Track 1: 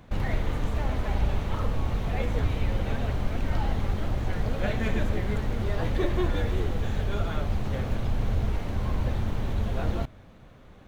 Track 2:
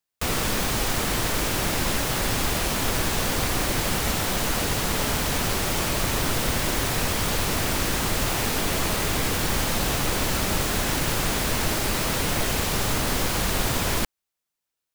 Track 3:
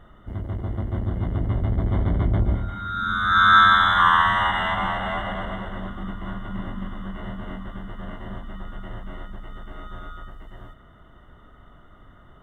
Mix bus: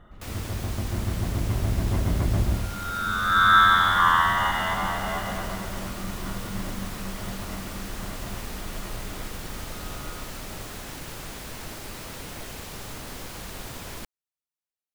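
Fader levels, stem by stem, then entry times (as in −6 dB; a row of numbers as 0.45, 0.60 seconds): −20.0, −13.5, −2.5 decibels; 0.00, 0.00, 0.00 seconds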